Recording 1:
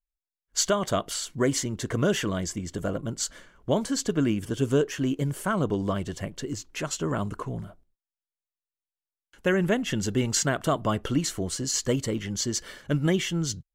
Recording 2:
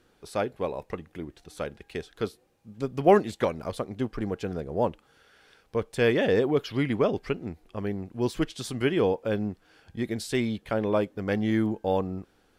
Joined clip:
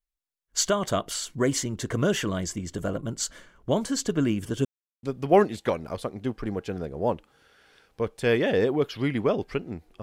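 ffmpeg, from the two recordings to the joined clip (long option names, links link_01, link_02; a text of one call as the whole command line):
ffmpeg -i cue0.wav -i cue1.wav -filter_complex "[0:a]apad=whole_dur=10.02,atrim=end=10.02,asplit=2[link_01][link_02];[link_01]atrim=end=4.65,asetpts=PTS-STARTPTS,afade=type=out:start_time=4.646:duration=0.004:curve=hsin[link_03];[link_02]atrim=start=4.65:end=5.03,asetpts=PTS-STARTPTS,volume=0[link_04];[1:a]atrim=start=2.78:end=7.77,asetpts=PTS-STARTPTS,afade=type=in:duration=0.004:curve=hsin[link_05];[link_03][link_04][link_05]concat=n=3:v=0:a=1" out.wav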